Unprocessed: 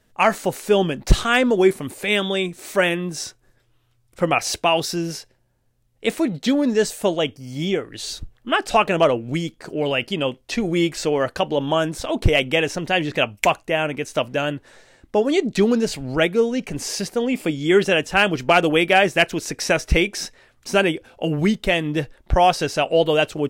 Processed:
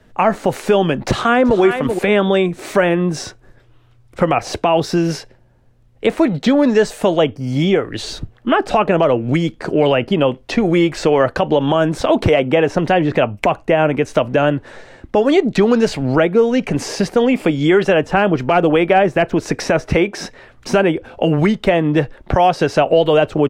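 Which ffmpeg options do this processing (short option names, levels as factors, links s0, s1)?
-filter_complex "[0:a]asplit=2[s0][s1];[s1]afade=t=in:st=0.99:d=0.01,afade=t=out:st=1.6:d=0.01,aecho=0:1:380|760:0.251189|0.0251189[s2];[s0][s2]amix=inputs=2:normalize=0,lowpass=f=1800:p=1,acrossover=split=92|610|1400[s3][s4][s5][s6];[s3]acompressor=threshold=0.00447:ratio=4[s7];[s4]acompressor=threshold=0.0398:ratio=4[s8];[s5]acompressor=threshold=0.0398:ratio=4[s9];[s6]acompressor=threshold=0.0112:ratio=4[s10];[s7][s8][s9][s10]amix=inputs=4:normalize=0,alimiter=level_in=6.31:limit=0.891:release=50:level=0:latency=1,volume=0.75"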